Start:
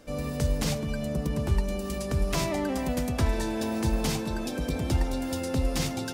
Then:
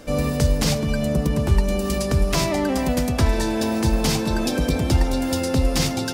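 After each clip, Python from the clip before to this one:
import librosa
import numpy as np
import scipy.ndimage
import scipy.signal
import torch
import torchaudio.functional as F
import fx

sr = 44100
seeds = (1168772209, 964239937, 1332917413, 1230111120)

y = fx.dynamic_eq(x, sr, hz=4900.0, q=2.4, threshold_db=-48.0, ratio=4.0, max_db=3)
y = fx.rider(y, sr, range_db=10, speed_s=0.5)
y = y * 10.0 ** (7.5 / 20.0)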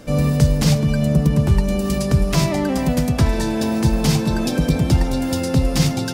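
y = fx.peak_eq(x, sr, hz=150.0, db=9.0, octaves=0.85)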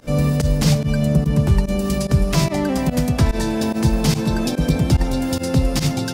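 y = fx.volume_shaper(x, sr, bpm=145, per_beat=1, depth_db=-20, release_ms=67.0, shape='fast start')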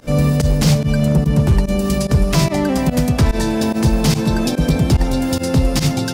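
y = np.clip(10.0 ** (10.0 / 20.0) * x, -1.0, 1.0) / 10.0 ** (10.0 / 20.0)
y = y * 10.0 ** (3.0 / 20.0)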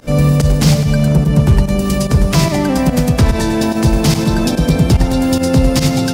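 y = fx.echo_feedback(x, sr, ms=103, feedback_pct=48, wet_db=-10.5)
y = y * 10.0 ** (2.5 / 20.0)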